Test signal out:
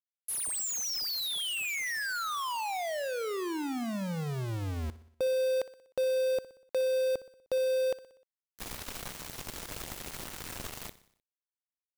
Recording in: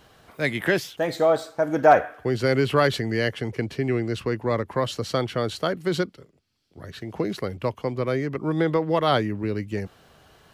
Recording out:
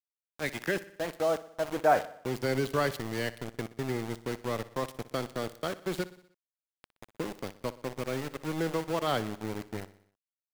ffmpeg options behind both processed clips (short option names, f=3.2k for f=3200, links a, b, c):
-af "aeval=exprs='val(0)*gte(abs(val(0)),0.0562)':c=same,aecho=1:1:61|122|183|244|305:0.141|0.0791|0.0443|0.0248|0.0139,volume=-8.5dB"